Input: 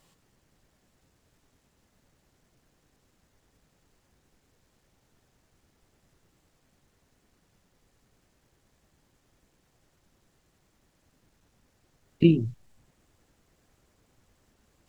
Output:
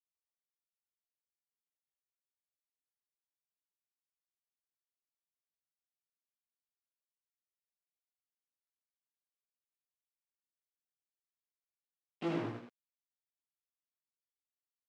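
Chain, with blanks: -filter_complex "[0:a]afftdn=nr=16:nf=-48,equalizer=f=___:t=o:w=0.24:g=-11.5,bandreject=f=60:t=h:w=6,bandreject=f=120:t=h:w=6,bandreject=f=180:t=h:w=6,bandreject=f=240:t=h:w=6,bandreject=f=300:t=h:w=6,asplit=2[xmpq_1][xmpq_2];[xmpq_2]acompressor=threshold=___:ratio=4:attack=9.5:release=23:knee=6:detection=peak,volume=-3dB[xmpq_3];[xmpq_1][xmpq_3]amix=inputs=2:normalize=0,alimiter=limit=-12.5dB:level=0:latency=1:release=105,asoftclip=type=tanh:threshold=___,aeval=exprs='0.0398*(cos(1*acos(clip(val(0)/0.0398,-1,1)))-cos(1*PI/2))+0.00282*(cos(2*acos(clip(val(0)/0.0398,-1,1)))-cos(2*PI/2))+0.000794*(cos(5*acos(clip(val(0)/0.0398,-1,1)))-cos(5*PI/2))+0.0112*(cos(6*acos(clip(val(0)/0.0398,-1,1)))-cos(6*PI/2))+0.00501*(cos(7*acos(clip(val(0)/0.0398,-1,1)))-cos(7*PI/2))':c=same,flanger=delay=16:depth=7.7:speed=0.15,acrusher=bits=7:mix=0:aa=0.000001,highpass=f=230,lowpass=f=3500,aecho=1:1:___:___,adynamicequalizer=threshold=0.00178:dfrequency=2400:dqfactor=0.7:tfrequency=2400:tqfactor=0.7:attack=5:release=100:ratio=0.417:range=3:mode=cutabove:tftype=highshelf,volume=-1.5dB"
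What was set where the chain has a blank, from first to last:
1000, -32dB, -28dB, 80, 0.631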